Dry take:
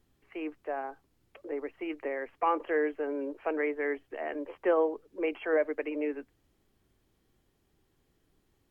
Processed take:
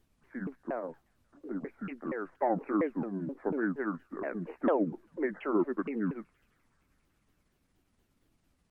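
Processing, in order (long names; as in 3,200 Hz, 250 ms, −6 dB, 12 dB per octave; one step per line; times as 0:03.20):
pitch shifter swept by a sawtooth −10.5 semitones, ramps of 235 ms
delay with a high-pass on its return 187 ms, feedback 78%, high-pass 2,400 Hz, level −23 dB
wow of a warped record 33 1/3 rpm, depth 250 cents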